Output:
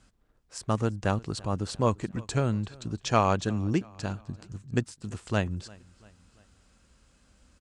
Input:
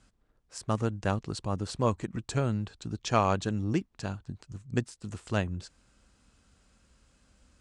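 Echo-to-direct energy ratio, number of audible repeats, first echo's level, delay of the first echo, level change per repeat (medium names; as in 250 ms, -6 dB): -22.5 dB, 2, -23.5 dB, 343 ms, -6.0 dB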